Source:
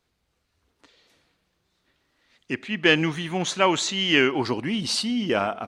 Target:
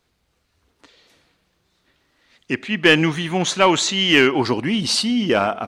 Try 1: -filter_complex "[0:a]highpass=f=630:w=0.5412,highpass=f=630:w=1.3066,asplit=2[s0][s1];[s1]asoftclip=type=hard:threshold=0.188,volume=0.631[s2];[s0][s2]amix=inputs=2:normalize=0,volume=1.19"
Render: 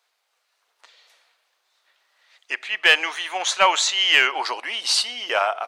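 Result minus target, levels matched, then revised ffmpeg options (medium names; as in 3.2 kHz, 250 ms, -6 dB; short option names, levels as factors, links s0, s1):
500 Hz band -6.5 dB
-filter_complex "[0:a]asplit=2[s0][s1];[s1]asoftclip=type=hard:threshold=0.188,volume=0.631[s2];[s0][s2]amix=inputs=2:normalize=0,volume=1.19"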